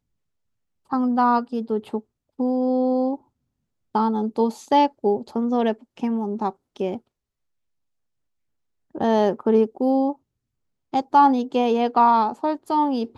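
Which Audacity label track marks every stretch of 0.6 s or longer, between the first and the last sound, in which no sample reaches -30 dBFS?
3.150000	3.950000	silence
6.970000	8.950000	silence
10.120000	10.940000	silence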